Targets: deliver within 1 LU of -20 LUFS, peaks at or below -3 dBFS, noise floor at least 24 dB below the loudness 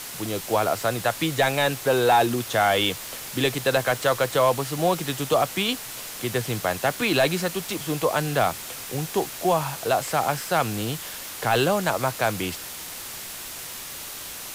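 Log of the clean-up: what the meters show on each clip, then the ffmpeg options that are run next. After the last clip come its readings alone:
noise floor -37 dBFS; noise floor target -49 dBFS; loudness -24.5 LUFS; peak -10.0 dBFS; loudness target -20.0 LUFS
-> -af "afftdn=nr=12:nf=-37"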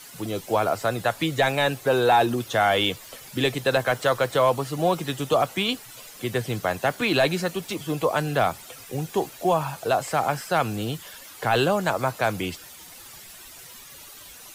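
noise floor -45 dBFS; noise floor target -48 dBFS
-> -af "afftdn=nr=6:nf=-45"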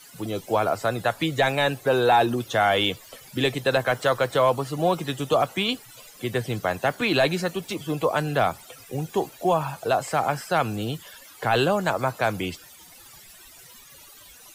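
noise floor -48 dBFS; loudness -24.0 LUFS; peak -10.5 dBFS; loudness target -20.0 LUFS
-> -af "volume=4dB"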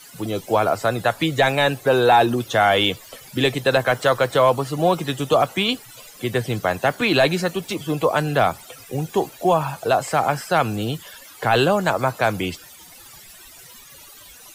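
loudness -20.0 LUFS; peak -6.5 dBFS; noise floor -44 dBFS

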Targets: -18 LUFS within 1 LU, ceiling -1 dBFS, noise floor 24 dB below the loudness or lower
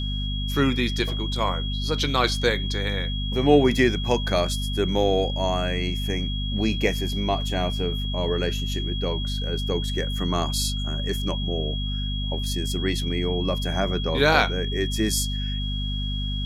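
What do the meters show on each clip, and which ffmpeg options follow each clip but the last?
hum 50 Hz; harmonics up to 250 Hz; hum level -25 dBFS; steady tone 3300 Hz; tone level -32 dBFS; loudness -24.5 LUFS; peak -4.0 dBFS; loudness target -18.0 LUFS
-> -af "bandreject=f=50:t=h:w=4,bandreject=f=100:t=h:w=4,bandreject=f=150:t=h:w=4,bandreject=f=200:t=h:w=4,bandreject=f=250:t=h:w=4"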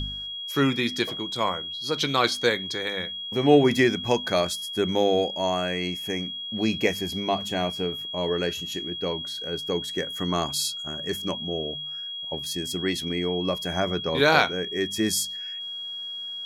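hum none; steady tone 3300 Hz; tone level -32 dBFS
-> -af "bandreject=f=3.3k:w=30"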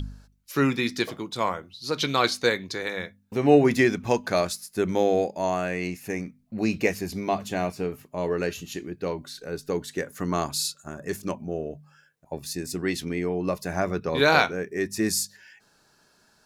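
steady tone none; loudness -26.5 LUFS; peak -4.5 dBFS; loudness target -18.0 LUFS
-> -af "volume=8.5dB,alimiter=limit=-1dB:level=0:latency=1"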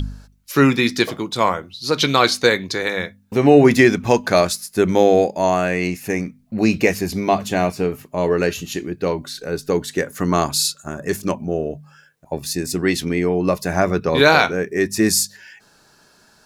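loudness -18.5 LUFS; peak -1.0 dBFS; noise floor -54 dBFS

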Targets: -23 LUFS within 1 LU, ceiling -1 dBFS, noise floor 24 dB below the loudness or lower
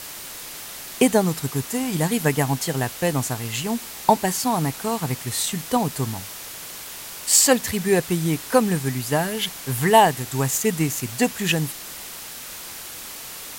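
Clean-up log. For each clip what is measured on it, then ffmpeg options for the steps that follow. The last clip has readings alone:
noise floor -37 dBFS; noise floor target -46 dBFS; loudness -21.5 LUFS; peak -1.5 dBFS; loudness target -23.0 LUFS
-> -af "afftdn=nr=9:nf=-37"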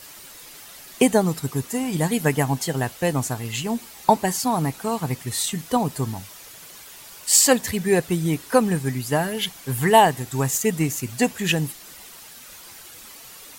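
noise floor -43 dBFS; noise floor target -46 dBFS
-> -af "afftdn=nr=6:nf=-43"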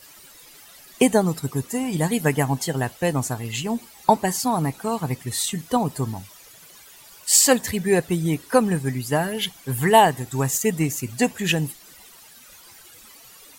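noise floor -48 dBFS; loudness -22.0 LUFS; peak -1.5 dBFS; loudness target -23.0 LUFS
-> -af "volume=-1dB"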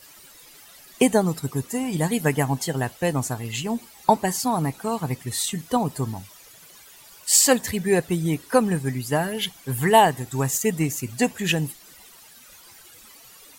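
loudness -23.0 LUFS; peak -2.5 dBFS; noise floor -49 dBFS

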